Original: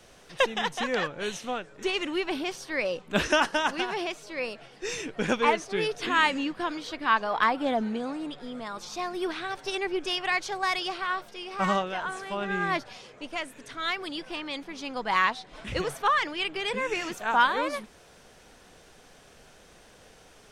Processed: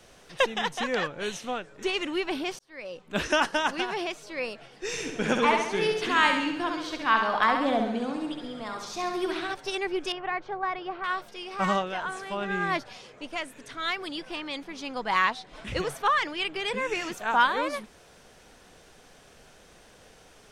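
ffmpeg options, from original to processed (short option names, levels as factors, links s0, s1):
-filter_complex "[0:a]asettb=1/sr,asplit=3[s0][s1][s2];[s0]atrim=end=4.874[s3];[s1]atrim=start=4.87:end=9.54,asetpts=PTS-STARTPTS,afade=t=in:d=0.004:c=qsin,afade=t=out:st=4.666:d=0.004:c=qsin,aecho=1:1:67|134|201|268|335|402|469:0.562|0.304|0.164|0.0885|0.0478|0.0258|0.0139,atrim=end_sample=205947[s4];[s2]atrim=start=9.536[s5];[s3][s4]acrossfade=d=0.004:c1=hsin:c2=qsin[s6];[s6][s5]acrossfade=d=0.004:c1=qsin:c2=hsin,asettb=1/sr,asplit=3[s7][s8][s9];[s7]atrim=end=10.124[s10];[s8]atrim=start=10.12:end=11.04,asetpts=PTS-STARTPTS,afade=t=in:d=0.004:c=qsin,afade=t=out:st=0.916:d=0.004:c=qsin,lowpass=1400[s11];[s9]atrim=start=11.036[s12];[s10][s11]acrossfade=d=0.004:c1=hsin:c2=qsin[s13];[s13][s12]acrossfade=d=0.004:c1=qsin:c2=hsin,asplit=2[s14][s15];[s14]atrim=end=2.59,asetpts=PTS-STARTPTS,afade=t=out:st=2.586:d=0.004:c=hsin[s16];[s15]atrim=start=2.59,asetpts=PTS-STARTPTS,afade=t=in:d=0.86[s17];[s16][s17]concat=n=2:v=0:a=1"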